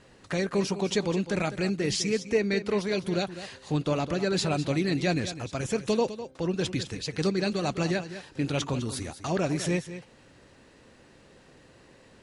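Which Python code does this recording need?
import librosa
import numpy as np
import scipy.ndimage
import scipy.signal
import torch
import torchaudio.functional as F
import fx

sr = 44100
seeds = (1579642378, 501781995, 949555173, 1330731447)

y = fx.fix_echo_inverse(x, sr, delay_ms=204, level_db=-12.5)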